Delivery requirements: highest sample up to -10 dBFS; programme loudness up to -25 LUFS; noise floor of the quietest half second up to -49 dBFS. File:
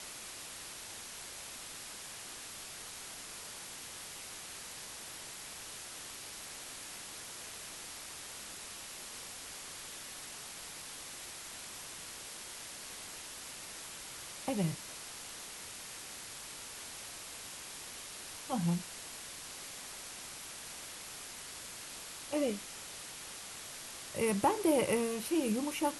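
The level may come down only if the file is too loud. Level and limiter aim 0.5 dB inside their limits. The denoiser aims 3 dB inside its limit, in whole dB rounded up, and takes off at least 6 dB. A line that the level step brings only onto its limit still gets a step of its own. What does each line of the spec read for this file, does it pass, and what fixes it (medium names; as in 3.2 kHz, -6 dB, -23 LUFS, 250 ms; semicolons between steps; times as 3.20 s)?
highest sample -17.5 dBFS: pass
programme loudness -40.0 LUFS: pass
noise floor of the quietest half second -47 dBFS: fail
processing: noise reduction 6 dB, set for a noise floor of -47 dBFS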